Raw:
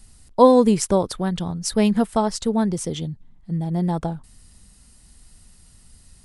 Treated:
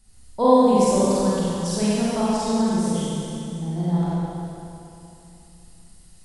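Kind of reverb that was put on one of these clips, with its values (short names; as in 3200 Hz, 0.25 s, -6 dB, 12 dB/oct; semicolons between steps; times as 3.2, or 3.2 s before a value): Schroeder reverb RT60 2.9 s, combs from 31 ms, DRR -9.5 dB; gain -10.5 dB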